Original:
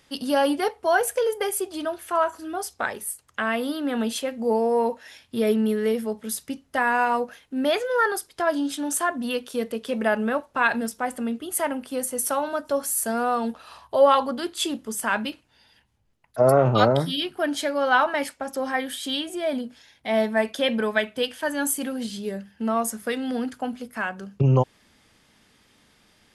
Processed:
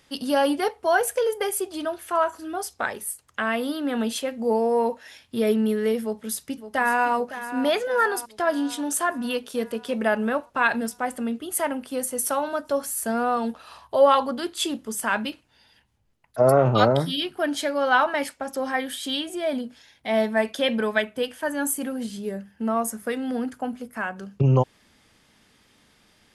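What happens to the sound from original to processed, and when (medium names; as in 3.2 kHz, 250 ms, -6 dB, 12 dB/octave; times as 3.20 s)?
6.01–7.13 s: echo throw 560 ms, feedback 60%, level -12 dB
12.85–13.37 s: tone controls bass +3 dB, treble -4 dB
21.02–24.16 s: peaking EQ 3.9 kHz -6.5 dB 1.4 oct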